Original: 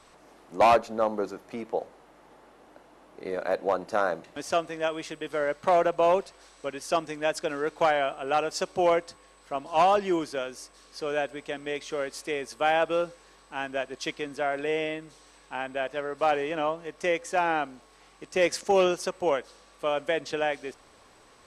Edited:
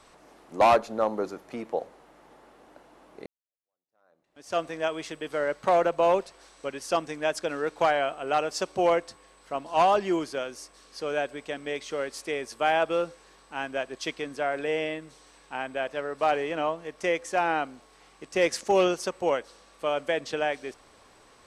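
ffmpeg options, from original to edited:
-filter_complex "[0:a]asplit=2[a][b];[a]atrim=end=3.26,asetpts=PTS-STARTPTS,afade=t=out:st=3.256:d=0.004:c=hsin[c];[b]atrim=start=3.26,asetpts=PTS-STARTPTS,afade=t=in:d=1.33:c=exp[d];[c][d]concat=n=2:v=0:a=1"

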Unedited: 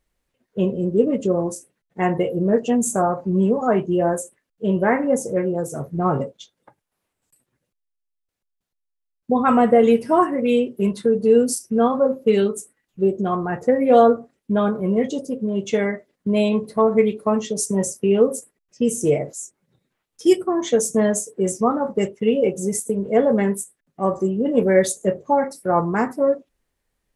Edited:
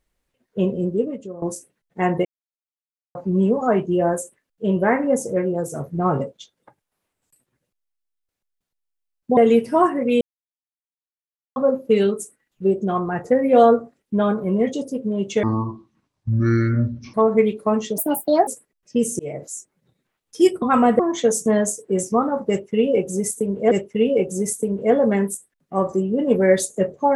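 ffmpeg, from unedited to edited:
-filter_complex "[0:a]asplit=15[a][b][c][d][e][f][g][h][i][j][k][l][m][n][o];[a]atrim=end=1.42,asetpts=PTS-STARTPTS,afade=t=out:st=0.84:d=0.58:c=qua:silence=0.158489[p];[b]atrim=start=1.42:end=2.25,asetpts=PTS-STARTPTS,afade=t=in:d=0.004:c=hsin:silence=0.158489,afade=t=out:st=0.826:d=0.004:c=hsin[q];[c]atrim=start=2.25:end=3.15,asetpts=PTS-STARTPTS,volume=0[r];[d]atrim=start=3.15:end=9.372,asetpts=PTS-STARTPTS,afade=t=in:d=0.004:c=hsin[s];[e]atrim=start=9.738:end=10.58,asetpts=PTS-STARTPTS,afade=t=out:st=0.838:d=0.004:c=hsin[t];[f]atrim=start=10.58:end=11.93,asetpts=PTS-STARTPTS,volume=0[u];[g]atrim=start=11.93:end=15.804,asetpts=PTS-STARTPTS,afade=t=in:d=0.004:c=hsin[v];[h]atrim=start=15.8:end=16.74,asetpts=PTS-STARTPTS,asetrate=24255,aresample=44100[w];[i]atrim=start=16.736:end=17.584[x];[j]atrim=start=17.58:end=18.33,asetpts=PTS-STARTPTS,asetrate=67032,aresample=44100[y];[k]atrim=start=18.326:end=19.05,asetpts=PTS-STARTPTS,afade=t=out:st=0.72:d=0.004:c=hsin[z];[l]atrim=start=19.05:end=20.482,asetpts=PTS-STARTPTS,afade=t=in:d=0.29[aa];[m]atrim=start=9.368:end=9.742[ab];[n]atrim=start=20.478:end=23.202[ac];[o]atrim=start=21.978[ad];[p][q][r][s]concat=n=4:v=0:a=1[ae];[t][u][v]concat=n=3:v=0:a=1[af];[ae][af]acrossfade=d=0.004:c1=hsin:c2=hsin[ag];[ag][w]acrossfade=d=0.004:c1=hsin:c2=hsin[ah];[ah][x]acrossfade=d=0.004:c1=hsin:c2=hsin[ai];[ai][y]acrossfade=d=0.004:c1=hsin:c2=hsin[aj];[z][aa]concat=n=2:v=0:a=1[ak];[aj][ak]acrossfade=d=0.004:c1=hsin:c2=hsin[al];[al][ab]acrossfade=d=0.004:c1=hsin:c2=hsin[am];[am][ac]acrossfade=d=0.004:c1=hsin:c2=hsin[an];[an][ad]acrossfade=d=0.004:c1=hsin:c2=hsin"

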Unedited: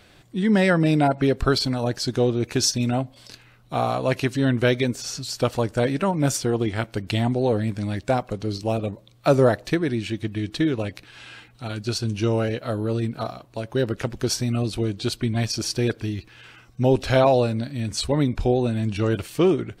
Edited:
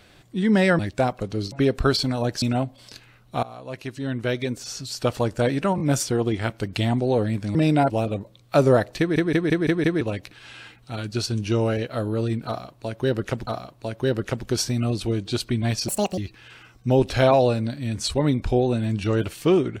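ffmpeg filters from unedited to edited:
-filter_complex "[0:a]asplit=18[a][b][c][d][e][f][g][h][i][j][k][l][m][n][o][p][q][r];[a]atrim=end=0.792[s];[b]atrim=start=7.888:end=8.622[t];[c]atrim=start=1.138:end=2.042[u];[d]atrim=start=2.798:end=3.81,asetpts=PTS-STARTPTS,afade=t=out:st=1.008:d=0.004:c=hsin:silence=0.105925[v];[e]atrim=start=3.81:end=6.162,asetpts=PTS-STARTPTS,afade=t=in:d=1.82:silence=0.105925[w];[f]atrim=start=6.138:end=6.162[x];[g]atrim=start=6.138:end=7.892[y];[h]atrim=start=0.788:end=1.142[z];[i]atrim=start=8.618:end=9.882[aa];[j]atrim=start=9.708:end=9.882[ab];[k]atrim=start=9.708:end=9.882[ac];[l]atrim=start=9.708:end=9.882[ad];[m]atrim=start=9.708:end=9.882[ae];[n]atrim=start=9.708:end=9.882[af];[o]atrim=start=10.728:end=14.192[ag];[p]atrim=start=13.188:end=15.604[ah];[q]atrim=start=15.6:end=16.11,asetpts=PTS-STARTPTS,asetrate=75852,aresample=44100,atrim=end_sample=13076,asetpts=PTS-STARTPTS[ai];[r]atrim=start=16.106[aj];[s][t]acrossfade=d=0.004:c1=hsin:c2=hsin[ak];[ak][u]acrossfade=d=0.004:c1=hsin:c2=hsin[al];[v][w]concat=n=2:v=0:a=1[am];[al][am]acrossfade=d=0.004:c1=hsin:c2=hsin[an];[an][x]acrossfade=d=0.004:c1=hsin:c2=hsin[ao];[ao][y]acrossfade=d=0.004:c1=hsin:c2=hsin[ap];[ap][z]acrossfade=d=0.004:c1=hsin:c2=hsin[aq];[aq][aa]acrossfade=d=0.004:c1=hsin:c2=hsin[ar];[ar][ab]acrossfade=d=0.004:c1=hsin:c2=hsin[as];[as][ac]acrossfade=d=0.004:c1=hsin:c2=hsin[at];[at][ad]acrossfade=d=0.004:c1=hsin:c2=hsin[au];[au][ae]acrossfade=d=0.004:c1=hsin:c2=hsin[av];[av][af]acrossfade=d=0.004:c1=hsin:c2=hsin[aw];[aw][ag]acrossfade=d=0.004:c1=hsin:c2=hsin[ax];[ax][ah]acrossfade=d=0.004:c1=hsin:c2=hsin[ay];[ay][ai]acrossfade=d=0.004:c1=hsin:c2=hsin[az];[az][aj]acrossfade=d=0.004:c1=hsin:c2=hsin"

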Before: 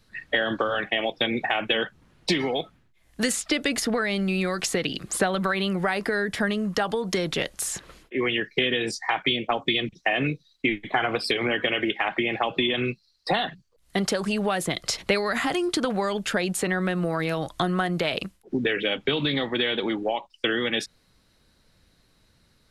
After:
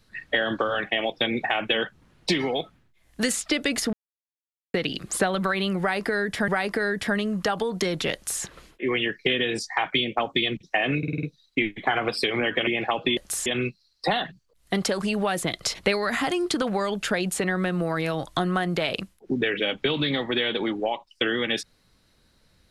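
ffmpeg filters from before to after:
-filter_complex "[0:a]asplit=12[a][b][c][d][e][f][g][h][i][j][k][l];[a]atrim=end=3.93,asetpts=PTS-STARTPTS,afade=t=out:st=3.926:d=0.004:c=hsin[m];[b]atrim=start=3.93:end=4.74,asetpts=PTS-STARTPTS,volume=0[n];[c]atrim=start=4.74:end=6.482,asetpts=PTS-STARTPTS,afade=t=in:d=0.004:c=hsin[o];[d]atrim=start=5.798:end=10.352[p];[e]atrim=start=10.298:end=10.352[q];[f]atrim=start=10.298:end=10.352[r];[g]atrim=start=10.298:end=10.352[s];[h]atrim=start=10.298:end=10.352[t];[i]atrim=start=10.298:end=11.742[u];[j]atrim=start=12.188:end=12.692[v];[k]atrim=start=7.458:end=7.752[w];[l]atrim=start=12.688[x];[m][n][o]concat=n=3:v=0:a=1[y];[y][p]acrossfade=d=0.004:c1=hsin:c2=hsin[z];[z][q]acrossfade=d=0.004:c1=hsin:c2=hsin[aa];[aa][r]acrossfade=d=0.004:c1=hsin:c2=hsin[ab];[ab][s]acrossfade=d=0.004:c1=hsin:c2=hsin[ac];[ac][t]acrossfade=d=0.004:c1=hsin:c2=hsin[ad];[ad][u]acrossfade=d=0.004:c1=hsin:c2=hsin[ae];[ae][v]acrossfade=d=0.004:c1=hsin:c2=hsin[af];[af][w]acrossfade=d=0.004:c1=hsin:c2=hsin[ag];[ag][x]acrossfade=d=0.004:c1=hsin:c2=hsin"

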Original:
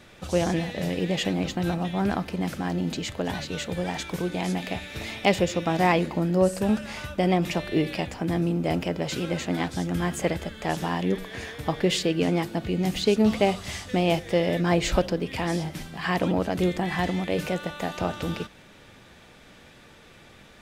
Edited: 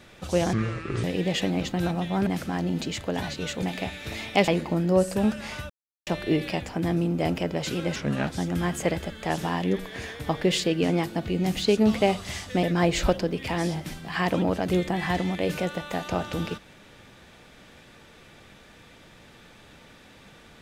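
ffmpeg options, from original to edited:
-filter_complex "[0:a]asplit=11[a][b][c][d][e][f][g][h][i][j][k];[a]atrim=end=0.534[l];[b]atrim=start=0.53:end=0.87,asetpts=PTS-STARTPTS,asetrate=29547,aresample=44100,atrim=end_sample=22379,asetpts=PTS-STARTPTS[m];[c]atrim=start=0.866:end=2.102[n];[d]atrim=start=2.378:end=3.742[o];[e]atrim=start=4.518:end=5.372[p];[f]atrim=start=5.928:end=7.15,asetpts=PTS-STARTPTS,afade=t=out:st=1.218:d=0.004:c=hsin[q];[g]atrim=start=7.15:end=7.52,asetpts=PTS-STARTPTS,volume=0[r];[h]atrim=start=7.52:end=9.414,asetpts=PTS-STARTPTS,afade=t=in:d=0.004:c=hsin[s];[i]atrim=start=9.41:end=9.66,asetpts=PTS-STARTPTS,asetrate=35280,aresample=44100,atrim=end_sample=13781,asetpts=PTS-STARTPTS[t];[j]atrim=start=9.656:end=14.022[u];[k]atrim=start=14.518[v];[l][m]acrossfade=d=0.004:c1=hsin:c2=hsin[w];[w][n]acrossfade=d=0.004:c1=hsin:c2=hsin[x];[x][o]acrossfade=d=0.004:c1=hsin:c2=hsin[y];[y][p]acrossfade=d=0.004:c1=hsin:c2=hsin[z];[q][r][s]concat=n=3:v=0:a=1[aa];[z][aa]acrossfade=d=0.004:c1=hsin:c2=hsin[ab];[ab][t]acrossfade=d=0.004:c1=hsin:c2=hsin[ac];[ac][u]acrossfade=d=0.004:c1=hsin:c2=hsin[ad];[ad][v]acrossfade=d=0.004:c1=hsin:c2=hsin"

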